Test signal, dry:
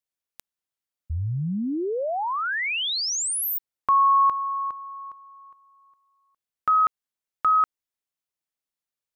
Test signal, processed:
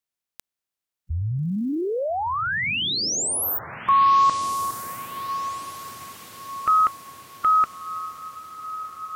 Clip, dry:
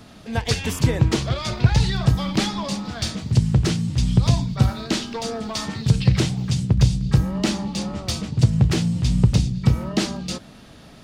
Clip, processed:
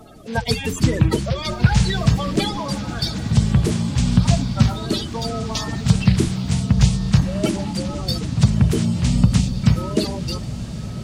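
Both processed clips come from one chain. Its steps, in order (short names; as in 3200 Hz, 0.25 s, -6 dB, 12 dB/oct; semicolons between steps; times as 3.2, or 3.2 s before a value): bin magnitudes rounded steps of 30 dB; diffused feedback echo 1.349 s, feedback 54%, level -12.5 dB; gain +2 dB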